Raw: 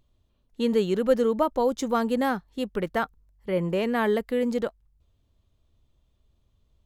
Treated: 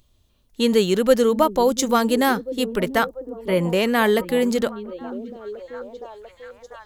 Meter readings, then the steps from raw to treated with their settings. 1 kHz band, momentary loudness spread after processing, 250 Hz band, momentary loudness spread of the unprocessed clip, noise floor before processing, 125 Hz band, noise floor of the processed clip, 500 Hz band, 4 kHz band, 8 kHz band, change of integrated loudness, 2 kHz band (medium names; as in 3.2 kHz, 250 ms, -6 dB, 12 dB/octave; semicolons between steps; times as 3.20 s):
+6.5 dB, 17 LU, +5.5 dB, 8 LU, -69 dBFS, +5.5 dB, -61 dBFS, +5.5 dB, +11.5 dB, +14.5 dB, +6.0 dB, +8.0 dB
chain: treble shelf 2.8 kHz +11 dB; on a send: repeats whose band climbs or falls 693 ms, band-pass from 260 Hz, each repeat 0.7 oct, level -10.5 dB; on the sum: trim +5 dB